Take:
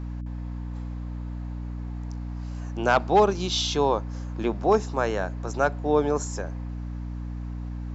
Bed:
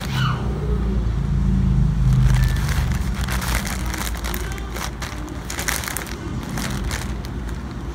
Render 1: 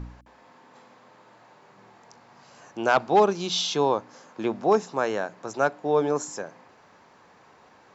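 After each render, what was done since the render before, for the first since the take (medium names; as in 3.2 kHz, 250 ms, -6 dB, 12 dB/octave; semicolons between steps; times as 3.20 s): de-hum 60 Hz, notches 5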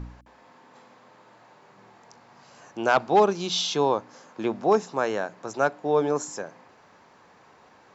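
no audible change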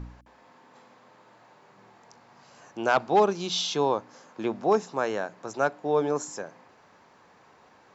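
trim -2 dB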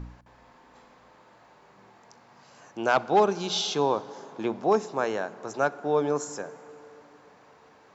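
plate-style reverb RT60 4.4 s, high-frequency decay 0.45×, pre-delay 0 ms, DRR 17 dB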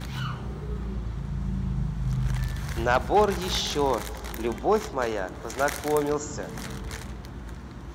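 add bed -11 dB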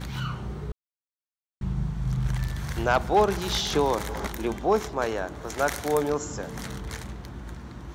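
0.72–1.61 s: mute; 3.73–4.27 s: three bands compressed up and down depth 100%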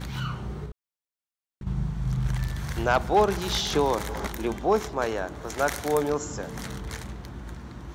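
0.65–1.67 s: compression, threshold -34 dBFS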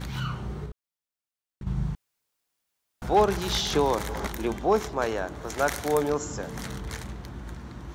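1.95–3.02 s: room tone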